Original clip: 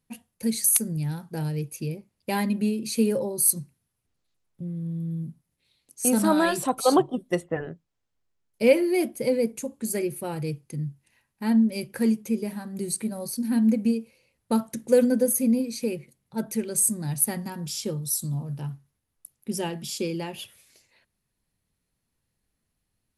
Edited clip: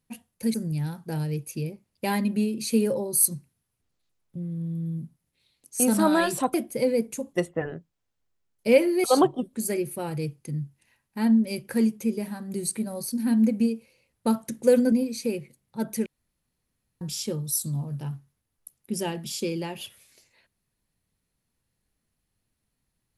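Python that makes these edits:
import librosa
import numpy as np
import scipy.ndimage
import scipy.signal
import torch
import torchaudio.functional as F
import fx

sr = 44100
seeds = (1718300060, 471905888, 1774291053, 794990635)

y = fx.edit(x, sr, fx.cut(start_s=0.54, length_s=0.25),
    fx.swap(start_s=6.79, length_s=0.49, other_s=8.99, other_length_s=0.79),
    fx.cut(start_s=15.17, length_s=0.33),
    fx.room_tone_fill(start_s=16.64, length_s=0.95), tone=tone)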